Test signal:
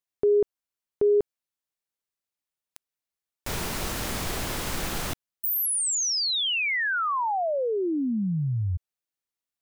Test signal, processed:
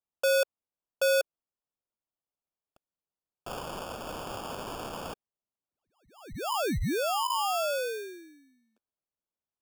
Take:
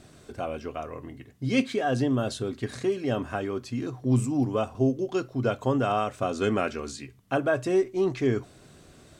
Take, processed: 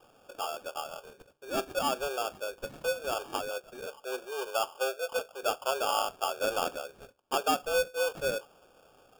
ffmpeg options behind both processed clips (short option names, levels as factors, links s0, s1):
-af "highpass=f=360:t=q:w=0.5412,highpass=f=360:t=q:w=1.307,lowpass=f=3100:t=q:w=0.5176,lowpass=f=3100:t=q:w=0.7071,lowpass=f=3100:t=q:w=1.932,afreqshift=130,acrusher=samples=22:mix=1:aa=0.000001,volume=0.75"